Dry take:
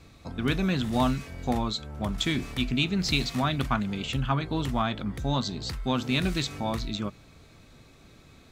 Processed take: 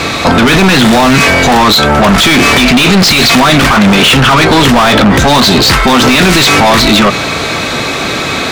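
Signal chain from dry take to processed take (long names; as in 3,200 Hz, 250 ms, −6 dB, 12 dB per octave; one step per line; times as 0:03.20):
mid-hump overdrive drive 38 dB, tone 3,700 Hz, clips at −11 dBFS
boost into a limiter +16.5 dB
level −1 dB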